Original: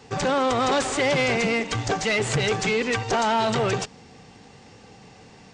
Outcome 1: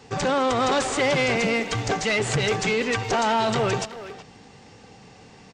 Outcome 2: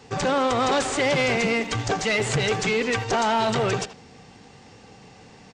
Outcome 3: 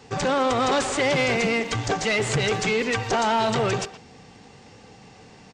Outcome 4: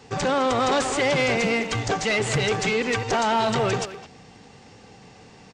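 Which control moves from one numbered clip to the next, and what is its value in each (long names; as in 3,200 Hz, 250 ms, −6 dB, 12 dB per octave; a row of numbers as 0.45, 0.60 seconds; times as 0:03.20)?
far-end echo of a speakerphone, delay time: 370, 80, 120, 210 milliseconds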